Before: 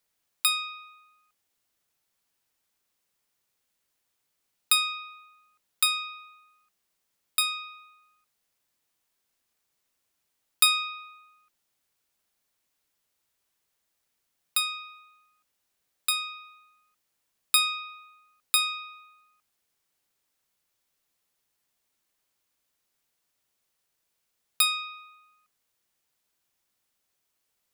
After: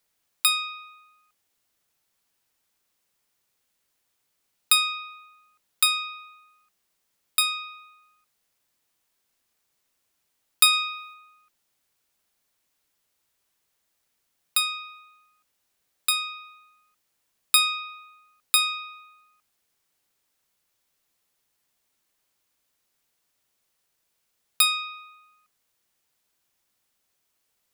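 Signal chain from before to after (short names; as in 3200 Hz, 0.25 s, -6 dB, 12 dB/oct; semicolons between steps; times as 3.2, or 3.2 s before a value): 10.73–11.14 high shelf 6000 Hz +6 dB; gain +3 dB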